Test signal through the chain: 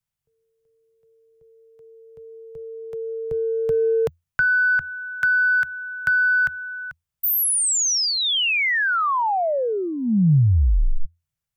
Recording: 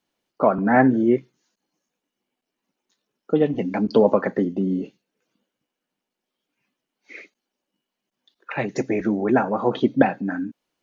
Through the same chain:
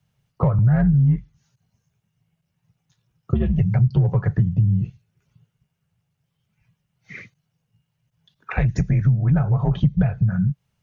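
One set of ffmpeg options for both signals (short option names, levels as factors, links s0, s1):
-filter_complex "[0:a]equalizer=f=4300:t=o:w=0.37:g=-3.5,asplit=2[s0][s1];[s1]asoftclip=type=tanh:threshold=0.224,volume=0.316[s2];[s0][s2]amix=inputs=2:normalize=0,afreqshift=-85,lowshelf=f=200:t=q:w=3:g=12,acompressor=threshold=0.141:ratio=4"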